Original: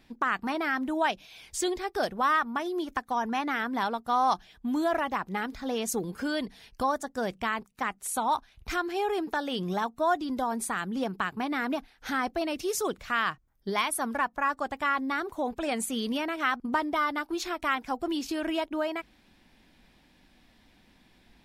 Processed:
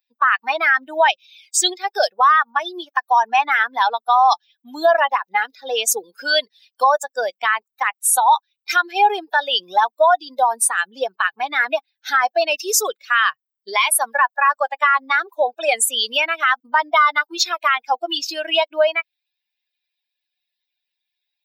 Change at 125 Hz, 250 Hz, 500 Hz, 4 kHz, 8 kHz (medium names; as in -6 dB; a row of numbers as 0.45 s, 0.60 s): under -20 dB, -8.5 dB, +10.0 dB, +15.0 dB, +16.0 dB